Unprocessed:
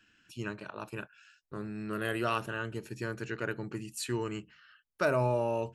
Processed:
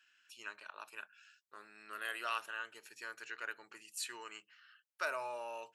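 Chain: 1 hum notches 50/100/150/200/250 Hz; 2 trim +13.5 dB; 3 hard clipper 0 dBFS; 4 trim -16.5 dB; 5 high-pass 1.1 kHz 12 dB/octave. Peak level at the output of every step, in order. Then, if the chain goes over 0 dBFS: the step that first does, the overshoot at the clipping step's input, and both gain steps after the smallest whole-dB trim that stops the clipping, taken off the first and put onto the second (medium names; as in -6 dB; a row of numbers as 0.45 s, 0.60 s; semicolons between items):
-16.0 dBFS, -2.5 dBFS, -2.5 dBFS, -19.0 dBFS, -24.5 dBFS; nothing clips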